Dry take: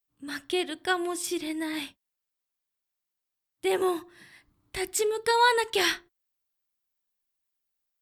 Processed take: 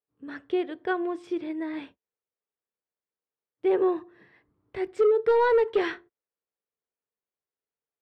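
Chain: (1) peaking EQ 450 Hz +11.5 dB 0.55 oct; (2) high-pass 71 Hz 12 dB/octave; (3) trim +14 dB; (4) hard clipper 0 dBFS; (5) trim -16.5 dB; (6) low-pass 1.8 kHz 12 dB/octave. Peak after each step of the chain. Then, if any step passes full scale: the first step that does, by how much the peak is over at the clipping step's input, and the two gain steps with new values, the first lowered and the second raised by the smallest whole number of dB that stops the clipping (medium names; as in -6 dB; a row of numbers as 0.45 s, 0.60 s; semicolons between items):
-6.0 dBFS, -6.0 dBFS, +8.0 dBFS, 0.0 dBFS, -16.5 dBFS, -16.0 dBFS; step 3, 8.0 dB; step 3 +6 dB, step 5 -8.5 dB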